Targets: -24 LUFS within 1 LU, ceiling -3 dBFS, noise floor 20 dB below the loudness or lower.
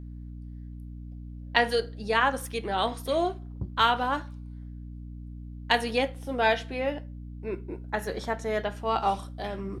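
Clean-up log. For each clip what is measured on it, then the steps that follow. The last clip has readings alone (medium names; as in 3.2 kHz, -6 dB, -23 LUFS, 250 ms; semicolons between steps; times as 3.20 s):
hum 60 Hz; highest harmonic 300 Hz; hum level -38 dBFS; loudness -28.5 LUFS; peak level -4.5 dBFS; loudness target -24.0 LUFS
-> hum notches 60/120/180/240/300 Hz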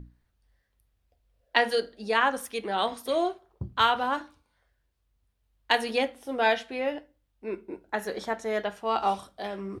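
hum not found; loudness -28.5 LUFS; peak level -5.0 dBFS; loudness target -24.0 LUFS
-> trim +4.5 dB; peak limiter -3 dBFS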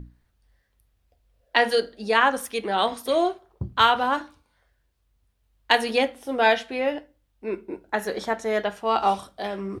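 loudness -24.0 LUFS; peak level -3.0 dBFS; noise floor -70 dBFS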